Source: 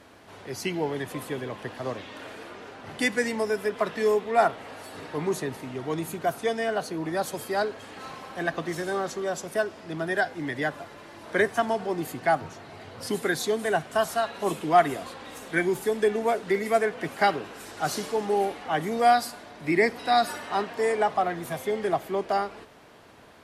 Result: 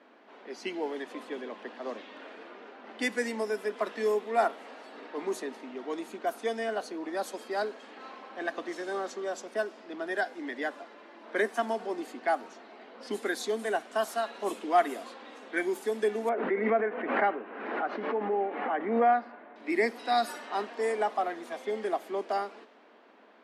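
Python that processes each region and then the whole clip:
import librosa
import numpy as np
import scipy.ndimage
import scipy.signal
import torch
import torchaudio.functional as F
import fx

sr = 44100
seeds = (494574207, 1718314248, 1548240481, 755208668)

y = fx.chain(x, sr, fx.lowpass(hz=2200.0, slope=24),
    fx.pre_swell(db_per_s=46.0), at=(16.29, 19.56))
y = scipy.signal.sosfilt(scipy.signal.ellip(4, 1.0, 40, 220.0, 'highpass', fs=sr, output='sos'), y)
y = fx.env_lowpass(y, sr, base_hz=2800.0, full_db=-22.0)
y = y * 10.0 ** (-4.5 / 20.0)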